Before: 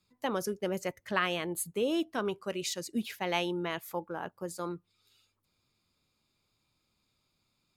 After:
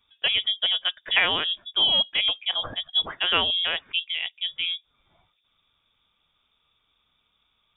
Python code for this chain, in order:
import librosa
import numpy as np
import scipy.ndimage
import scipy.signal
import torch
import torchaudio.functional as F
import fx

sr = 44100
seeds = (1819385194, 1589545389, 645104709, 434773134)

y = fx.freq_invert(x, sr, carrier_hz=3600)
y = y * 10.0 ** (8.5 / 20.0)